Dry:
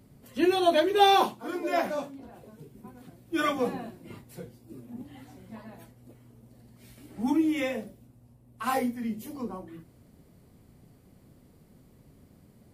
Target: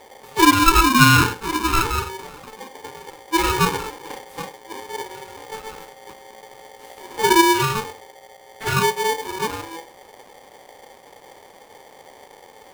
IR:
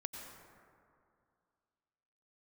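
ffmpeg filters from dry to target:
-filter_complex "[0:a]asplit=2[s0][s1];[1:a]atrim=start_sample=2205,afade=t=out:st=0.15:d=0.01,atrim=end_sample=7056,lowpass=f=1200:w=0.5412,lowpass=f=1200:w=1.3066[s2];[s1][s2]afir=irnorm=-1:irlink=0,volume=1.41[s3];[s0][s3]amix=inputs=2:normalize=0,acrossover=split=3900[s4][s5];[s5]acompressor=threshold=0.00251:ratio=4:attack=1:release=60[s6];[s4][s6]amix=inputs=2:normalize=0,aeval=exprs='val(0)*sgn(sin(2*PI*660*n/s))':c=same,volume=1.78"

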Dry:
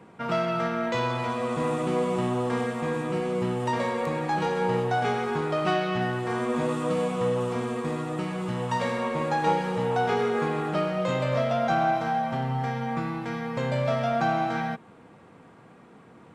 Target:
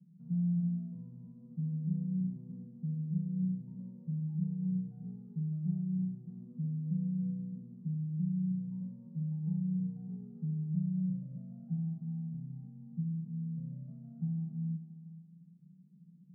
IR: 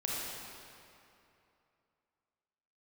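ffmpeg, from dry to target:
-filter_complex "[0:a]asuperpass=centerf=170:order=4:qfactor=5.2,asplit=2[s0][s1];[1:a]atrim=start_sample=2205,asetrate=52920,aresample=44100[s2];[s1][s2]afir=irnorm=-1:irlink=0,volume=0.282[s3];[s0][s3]amix=inputs=2:normalize=0,volume=1.12"

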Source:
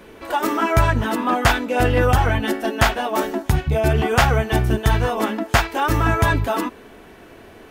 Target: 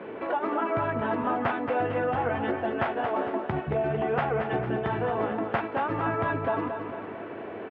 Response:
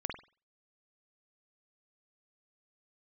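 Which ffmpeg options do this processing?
-filter_complex "[0:a]highpass=f=100:w=0.5412,highpass=f=100:w=1.3066,equalizer=f=580:w=0.47:g=9,acompressor=threshold=0.0398:ratio=3,lowpass=f=2800:w=0.5412,lowpass=f=2800:w=1.3066,asplit=2[s0][s1];[s1]aecho=0:1:226|452|678|904|1130|1356:0.447|0.228|0.116|0.0593|0.0302|0.0154[s2];[s0][s2]amix=inputs=2:normalize=0,volume=0.794"

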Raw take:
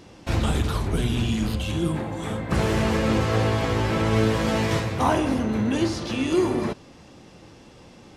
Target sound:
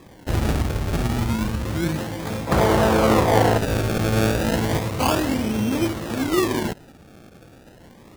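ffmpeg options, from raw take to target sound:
-filter_complex "[0:a]acrusher=samples=30:mix=1:aa=0.000001:lfo=1:lforange=30:lforate=0.31,asettb=1/sr,asplit=3[s0][s1][s2];[s0]atrim=end=2.474[s3];[s1]atrim=start=2.47:end=3.58,asetpts=PTS-STARTPTS,afade=t=in:d=0.004:c=qsin,afade=t=out:st=1.106:d=0.004:c=qsin,equalizer=f=760:t=o:w=2:g=9[s4];[s2]atrim=start=3.576[s5];[s3][s4]acrossfade=d=0.004:c1=hsin:c2=qsin[s6];[s6][s5]acrossfade=d=0.004:c1=qsin:c2=hsin,volume=1.12"

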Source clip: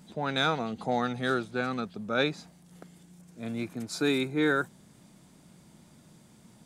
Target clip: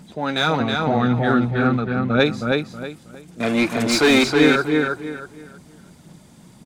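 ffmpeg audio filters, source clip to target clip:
-filter_complex "[0:a]asettb=1/sr,asplit=3[s0][s1][s2];[s0]atrim=end=3.404[s3];[s1]atrim=start=3.4:end=4.24,asetpts=PTS-STARTPTS,afade=t=in:d=0.004:c=qsin,afade=t=out:st=0.836:d=0.004:c=qsin,asplit=2[s4][s5];[s5]highpass=f=720:p=1,volume=17.8,asoftclip=type=tanh:threshold=0.2[s6];[s4][s6]amix=inputs=2:normalize=0,lowpass=f=3000:p=1,volume=0.501[s7];[s2]atrim=start=4.236[s8];[s3][s7]acrossfade=d=0.004:c1=hsin:c2=qsin[s9];[s9][s8]acrossfade=d=0.004:c1=qsin:c2=hsin,aphaser=in_gain=1:out_gain=1:delay=3.8:decay=0.4:speed=1.8:type=sinusoidal,asettb=1/sr,asplit=3[s10][s11][s12];[s10]atrim=end=0.604[s13];[s11]atrim=start=0.6:end=2.2,asetpts=PTS-STARTPTS,afade=t=in:d=0.004:c=qsin,afade=t=out:st=1.596:d=0.004:c=qsin,bass=f=250:g=9,treble=f=4000:g=-14[s14];[s12]atrim=start=2.196[s15];[s13][s14]acrossfade=d=0.004:c1=hsin:c2=qsin[s16];[s16][s15]acrossfade=d=0.004:c1=qsin:c2=hsin,asplit=2[s17][s18];[s18]adelay=320,lowpass=f=4800:p=1,volume=0.708,asplit=2[s19][s20];[s20]adelay=320,lowpass=f=4800:p=1,volume=0.28,asplit=2[s21][s22];[s22]adelay=320,lowpass=f=4800:p=1,volume=0.28,asplit=2[s23][s24];[s24]adelay=320,lowpass=f=4800:p=1,volume=0.28[s25];[s19][s21][s23][s25]amix=inputs=4:normalize=0[s26];[s17][s26]amix=inputs=2:normalize=0,volume=2"

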